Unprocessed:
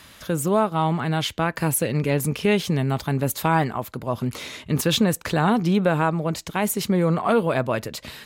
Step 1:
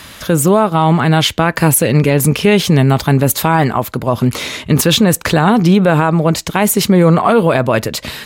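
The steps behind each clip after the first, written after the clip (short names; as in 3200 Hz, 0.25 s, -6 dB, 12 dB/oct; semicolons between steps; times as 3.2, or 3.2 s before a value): maximiser +13.5 dB; gain -1 dB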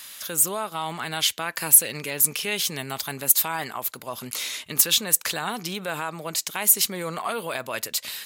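tilt +4.5 dB/oct; gain -15.5 dB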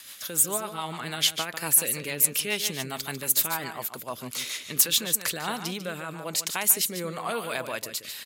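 on a send: echo 0.146 s -9.5 dB; on the sum: rotary speaker horn 7 Hz, later 1 Hz, at 4.71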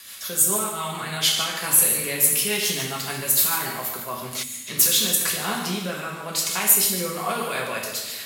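two-slope reverb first 0.73 s, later 2.8 s, DRR -3 dB; spectral gain 4.43–4.67, 290–6500 Hz -13 dB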